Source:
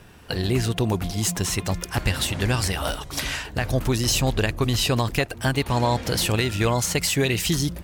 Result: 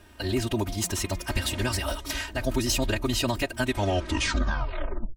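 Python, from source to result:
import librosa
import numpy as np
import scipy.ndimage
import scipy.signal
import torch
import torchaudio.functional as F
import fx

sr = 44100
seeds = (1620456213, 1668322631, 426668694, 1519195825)

y = fx.tape_stop_end(x, sr, length_s=2.44)
y = fx.stretch_vocoder(y, sr, factor=0.66)
y = y + 0.83 * np.pad(y, (int(3.2 * sr / 1000.0), 0))[:len(y)]
y = y * librosa.db_to_amplitude(-4.5)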